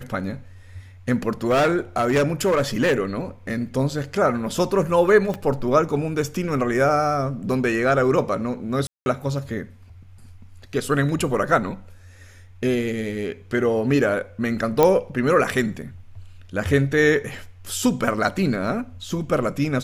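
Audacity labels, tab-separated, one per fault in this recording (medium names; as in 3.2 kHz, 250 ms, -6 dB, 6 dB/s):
1.440000	2.980000	clipped -14.5 dBFS
5.340000	5.340000	pop -15 dBFS
8.870000	9.060000	dropout 191 ms
14.830000	14.830000	pop -4 dBFS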